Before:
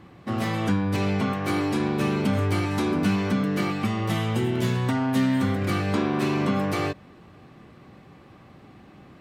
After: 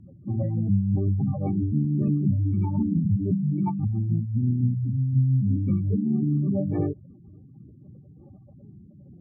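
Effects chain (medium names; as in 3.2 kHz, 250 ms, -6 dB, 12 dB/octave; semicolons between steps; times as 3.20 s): spectral gate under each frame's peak -10 dB strong; formant shift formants -5 st; rotary cabinet horn 6.7 Hz, later 1 Hz, at 5.01 s; trim +4 dB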